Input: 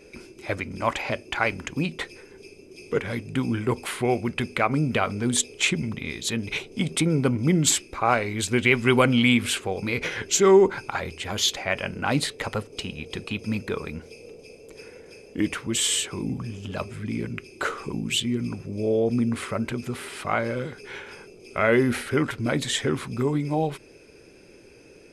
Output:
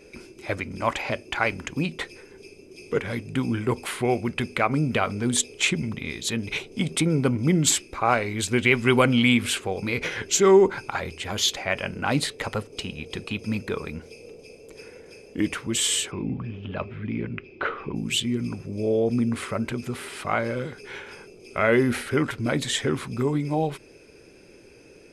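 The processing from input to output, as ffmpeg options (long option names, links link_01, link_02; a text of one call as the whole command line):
ffmpeg -i in.wav -filter_complex "[0:a]asplit=3[link_01][link_02][link_03];[link_01]afade=type=out:start_time=16.1:duration=0.02[link_04];[link_02]lowpass=frequency=3200:width=0.5412,lowpass=frequency=3200:width=1.3066,afade=type=in:start_time=16.1:duration=0.02,afade=type=out:start_time=17.95:duration=0.02[link_05];[link_03]afade=type=in:start_time=17.95:duration=0.02[link_06];[link_04][link_05][link_06]amix=inputs=3:normalize=0" out.wav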